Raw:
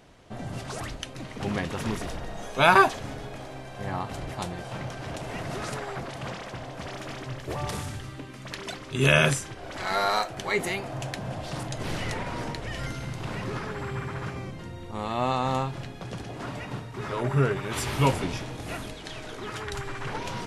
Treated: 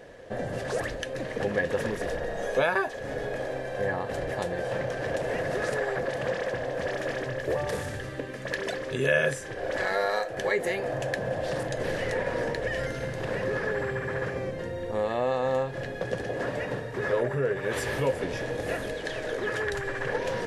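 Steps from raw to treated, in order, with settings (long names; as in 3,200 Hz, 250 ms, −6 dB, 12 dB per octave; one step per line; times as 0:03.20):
downward compressor 3 to 1, threshold −33 dBFS, peak gain reduction 15.5 dB
hollow resonant body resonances 510/1,700 Hz, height 17 dB, ringing for 25 ms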